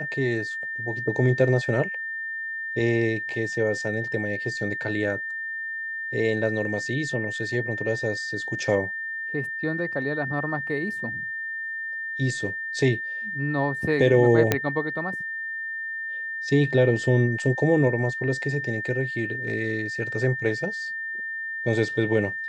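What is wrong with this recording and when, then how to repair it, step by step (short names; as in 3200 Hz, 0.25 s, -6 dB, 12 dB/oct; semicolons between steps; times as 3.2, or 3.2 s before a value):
tone 1800 Hz -29 dBFS
14.52 pop -5 dBFS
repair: de-click; notch 1800 Hz, Q 30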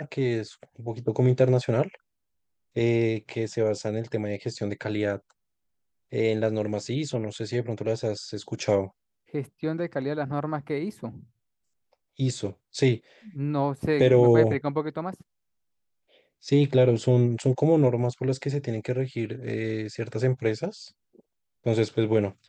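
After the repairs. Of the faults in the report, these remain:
none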